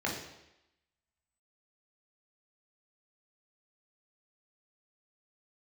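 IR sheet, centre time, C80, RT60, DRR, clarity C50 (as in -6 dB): 40 ms, 7.0 dB, 0.90 s, -3.0 dB, 4.5 dB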